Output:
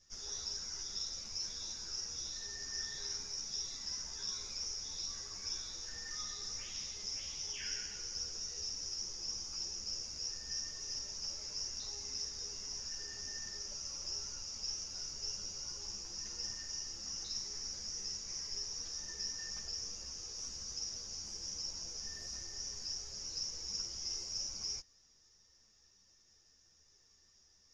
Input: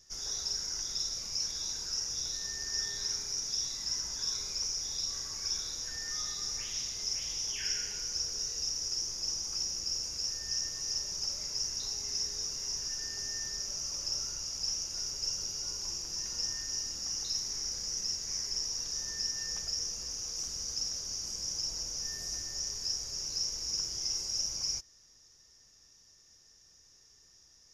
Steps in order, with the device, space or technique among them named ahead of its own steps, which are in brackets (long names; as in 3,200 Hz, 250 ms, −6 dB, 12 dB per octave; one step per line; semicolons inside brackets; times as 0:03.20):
string-machine ensemble chorus (string-ensemble chorus; low-pass filter 6,100 Hz 12 dB per octave)
level −1.5 dB